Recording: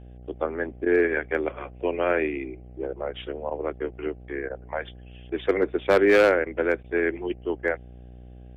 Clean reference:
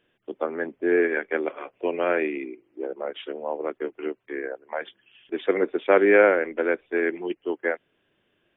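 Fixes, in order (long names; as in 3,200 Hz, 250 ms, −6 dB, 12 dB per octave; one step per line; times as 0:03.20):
clipped peaks rebuilt −11.5 dBFS
hum removal 61.2 Hz, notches 13
repair the gap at 0:00.85/0:03.50/0:04.49/0:06.45/0:06.83, 11 ms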